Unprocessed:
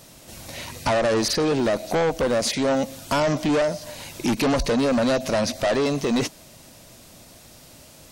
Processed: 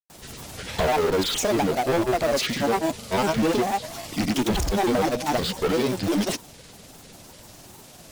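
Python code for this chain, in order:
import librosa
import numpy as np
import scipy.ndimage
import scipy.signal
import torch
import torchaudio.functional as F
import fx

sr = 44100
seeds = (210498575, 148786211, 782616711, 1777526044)

p1 = fx.granulator(x, sr, seeds[0], grain_ms=100.0, per_s=20.0, spray_ms=100.0, spread_st=7)
p2 = (np.mod(10.0 ** (25.0 / 20.0) * p1 + 1.0, 2.0) - 1.0) / 10.0 ** (25.0 / 20.0)
y = p1 + (p2 * 10.0 ** (-8.0 / 20.0))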